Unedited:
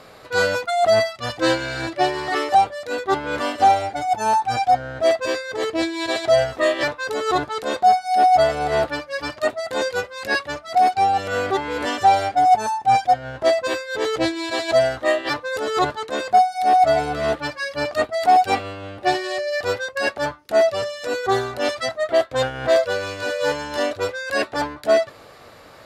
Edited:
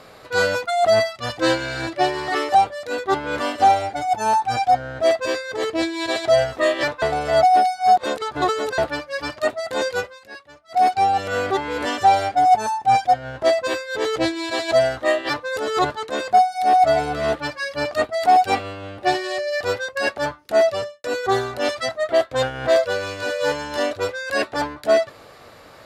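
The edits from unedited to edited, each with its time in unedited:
7.02–8.78 reverse
10.06–10.82 dip -17.5 dB, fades 0.14 s
20.74–21.04 studio fade out

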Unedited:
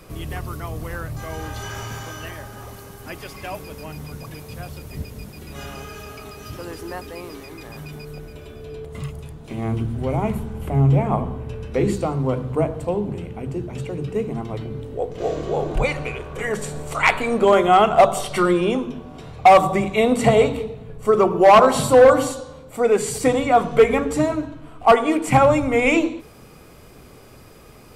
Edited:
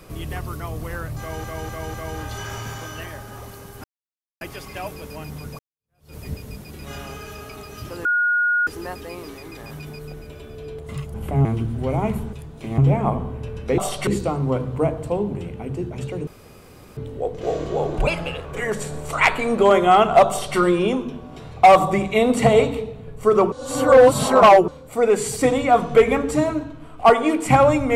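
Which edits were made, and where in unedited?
1.19–1.44 loop, 4 plays
3.09 insert silence 0.57 s
4.27–4.83 fade in exponential
6.73 add tone 1440 Hz -16 dBFS 0.62 s
9.2–9.65 swap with 10.53–10.84
14.04–14.74 room tone
15.84–16.27 speed 113%
18.1–18.39 copy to 11.84
21.34–22.5 reverse

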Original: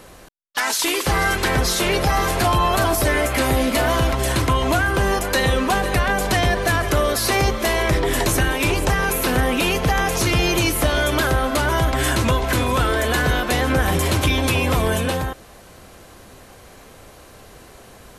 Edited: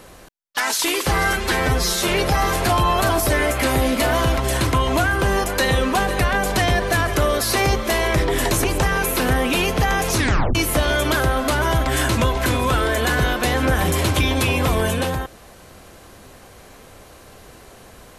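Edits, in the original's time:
1.33–1.83 stretch 1.5×
8.39–8.71 cut
10.23 tape stop 0.39 s

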